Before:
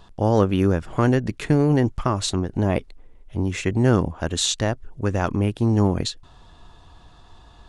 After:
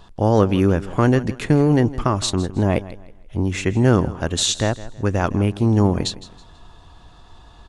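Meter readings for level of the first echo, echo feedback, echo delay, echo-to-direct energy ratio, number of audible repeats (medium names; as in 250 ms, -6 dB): -17.0 dB, 31%, 161 ms, -16.5 dB, 2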